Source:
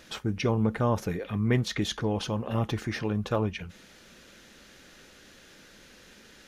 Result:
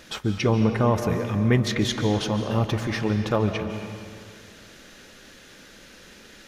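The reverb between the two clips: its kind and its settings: algorithmic reverb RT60 2.2 s, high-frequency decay 0.85×, pre-delay 105 ms, DRR 7 dB; trim +4.5 dB

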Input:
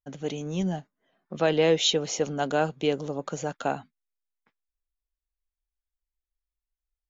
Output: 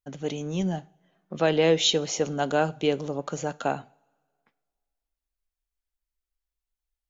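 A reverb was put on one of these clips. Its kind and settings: two-slope reverb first 0.48 s, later 2 s, from -22 dB, DRR 18 dB; trim +1 dB

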